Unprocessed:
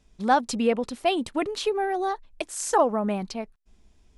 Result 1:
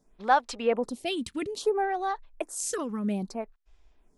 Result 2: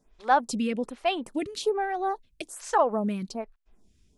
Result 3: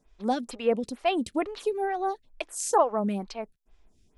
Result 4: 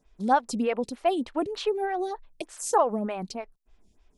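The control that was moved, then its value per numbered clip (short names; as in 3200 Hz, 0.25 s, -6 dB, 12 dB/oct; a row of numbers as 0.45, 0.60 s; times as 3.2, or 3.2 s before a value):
photocell phaser, rate: 0.61, 1.2, 2.2, 3.3 Hz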